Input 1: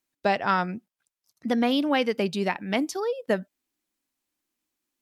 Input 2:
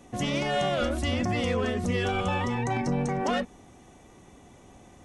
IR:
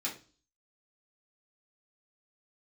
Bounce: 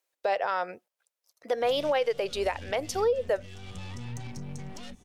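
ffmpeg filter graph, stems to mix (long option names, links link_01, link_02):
-filter_complex "[0:a]lowshelf=frequency=340:width_type=q:width=3:gain=-13.5,volume=0.5dB,asplit=2[link_01][link_02];[1:a]acompressor=threshold=-28dB:ratio=6,aeval=exprs='(tanh(39.8*val(0)+0.6)-tanh(0.6))/39.8':channel_layout=same,acrossover=split=180|3000[link_03][link_04][link_05];[link_04]acompressor=threshold=-51dB:ratio=6[link_06];[link_03][link_06][link_05]amix=inputs=3:normalize=0,adelay=1500,volume=2.5dB[link_07];[link_02]apad=whole_len=288615[link_08];[link_07][link_08]sidechaincompress=threshold=-23dB:ratio=4:attack=8.7:release=678[link_09];[link_01][link_09]amix=inputs=2:normalize=0,alimiter=limit=-18dB:level=0:latency=1:release=112"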